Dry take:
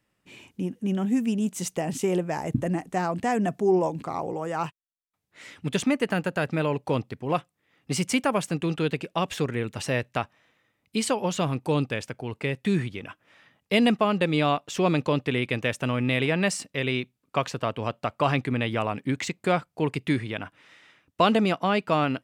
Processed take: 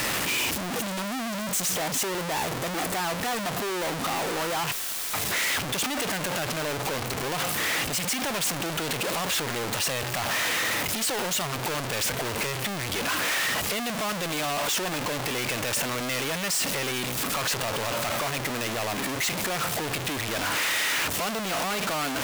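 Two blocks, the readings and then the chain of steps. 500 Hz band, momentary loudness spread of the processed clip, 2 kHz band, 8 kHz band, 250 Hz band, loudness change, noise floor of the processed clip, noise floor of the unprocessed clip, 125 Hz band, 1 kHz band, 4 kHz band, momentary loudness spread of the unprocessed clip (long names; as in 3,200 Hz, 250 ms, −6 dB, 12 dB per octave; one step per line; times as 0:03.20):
−4.5 dB, 4 LU, +4.0 dB, +10.5 dB, −7.5 dB, 0.0 dB, −32 dBFS, −78 dBFS, −6.5 dB, −0.5 dB, +7.0 dB, 9 LU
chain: sign of each sample alone
low-shelf EQ 320 Hz −11 dB
level +1.5 dB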